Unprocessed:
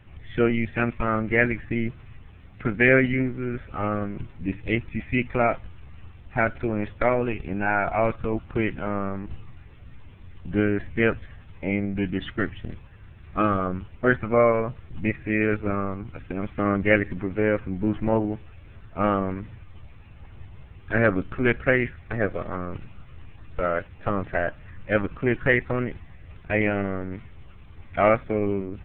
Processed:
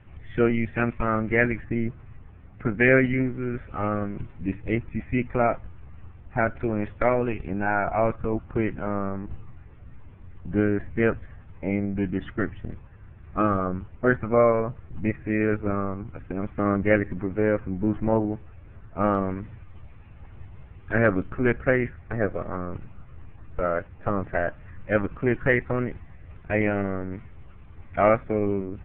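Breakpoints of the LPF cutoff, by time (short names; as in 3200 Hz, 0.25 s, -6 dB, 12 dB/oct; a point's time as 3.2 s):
2400 Hz
from 1.64 s 1600 Hz
from 2.78 s 2400 Hz
from 4.58 s 1700 Hz
from 6.57 s 2400 Hz
from 7.51 s 1700 Hz
from 19.15 s 2300 Hz
from 21.29 s 1700 Hz
from 24.33 s 2100 Hz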